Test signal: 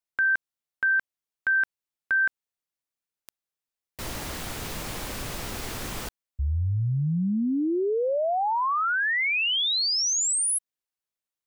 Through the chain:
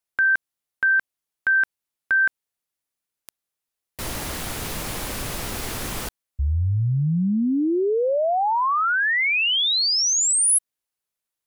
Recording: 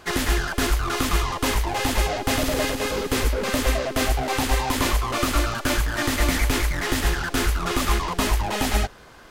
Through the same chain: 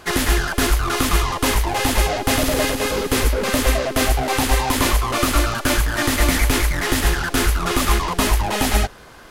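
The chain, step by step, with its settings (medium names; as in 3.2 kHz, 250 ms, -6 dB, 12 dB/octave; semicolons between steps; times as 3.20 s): peaking EQ 11 kHz +4.5 dB 0.46 oct; trim +4 dB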